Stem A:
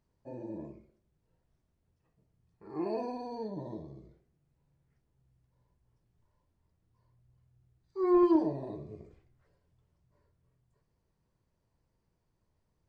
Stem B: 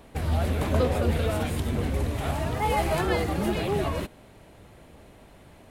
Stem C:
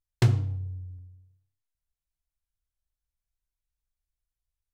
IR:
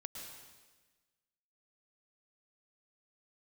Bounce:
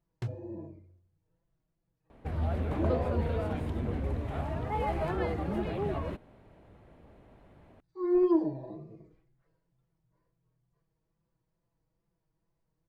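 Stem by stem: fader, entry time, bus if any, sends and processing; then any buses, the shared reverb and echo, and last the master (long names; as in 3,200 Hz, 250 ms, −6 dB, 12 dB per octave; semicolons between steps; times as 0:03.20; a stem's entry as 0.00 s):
−5.0 dB, 0.00 s, no send, comb filter 6.1 ms, depth 92%; tape wow and flutter 58 cents
−5.5 dB, 2.10 s, no send, high-shelf EQ 3,900 Hz −12 dB
−14.5 dB, 0.00 s, no send, reverb reduction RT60 0.54 s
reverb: not used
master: high-shelf EQ 3,100 Hz −8 dB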